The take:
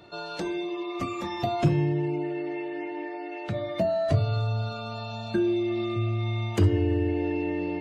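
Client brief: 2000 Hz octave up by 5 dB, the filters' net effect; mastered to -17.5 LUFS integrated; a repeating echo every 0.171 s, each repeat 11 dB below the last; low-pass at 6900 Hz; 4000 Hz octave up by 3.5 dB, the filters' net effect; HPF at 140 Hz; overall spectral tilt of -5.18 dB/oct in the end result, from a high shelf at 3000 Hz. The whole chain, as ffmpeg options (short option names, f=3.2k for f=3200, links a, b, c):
-af "highpass=140,lowpass=6.9k,equalizer=f=2k:t=o:g=6.5,highshelf=f=3k:g=-4.5,equalizer=f=4k:t=o:g=5.5,aecho=1:1:171|342|513:0.282|0.0789|0.0221,volume=11.5dB"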